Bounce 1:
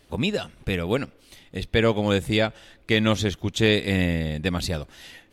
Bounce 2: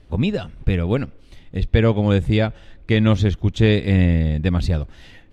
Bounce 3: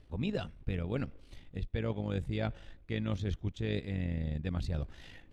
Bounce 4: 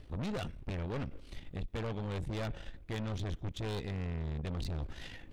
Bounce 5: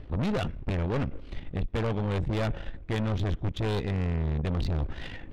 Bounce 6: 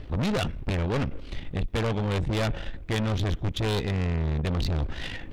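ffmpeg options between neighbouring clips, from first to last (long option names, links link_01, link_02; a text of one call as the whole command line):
ffmpeg -i in.wav -af "aemphasis=mode=reproduction:type=bsi" out.wav
ffmpeg -i in.wav -af "areverse,acompressor=threshold=-23dB:ratio=6,areverse,tremolo=f=51:d=0.519,volume=-5.5dB" out.wav
ffmpeg -i in.wav -af "aeval=exprs='(tanh(126*val(0)+0.5)-tanh(0.5))/126':channel_layout=same,volume=7.5dB" out.wav
ffmpeg -i in.wav -af "adynamicsmooth=sensitivity=8:basefreq=2900,volume=9dB" out.wav
ffmpeg -i in.wav -filter_complex "[0:a]asplit=2[link_01][link_02];[link_02]asoftclip=type=tanh:threshold=-34dB,volume=-5dB[link_03];[link_01][link_03]amix=inputs=2:normalize=0,highshelf=frequency=3100:gain=9" out.wav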